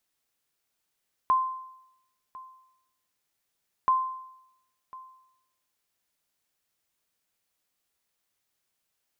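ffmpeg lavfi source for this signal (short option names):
-f lavfi -i "aevalsrc='0.15*(sin(2*PI*1040*mod(t,2.58))*exp(-6.91*mod(t,2.58)/0.82)+0.0891*sin(2*PI*1040*max(mod(t,2.58)-1.05,0))*exp(-6.91*max(mod(t,2.58)-1.05,0)/0.82))':d=5.16:s=44100"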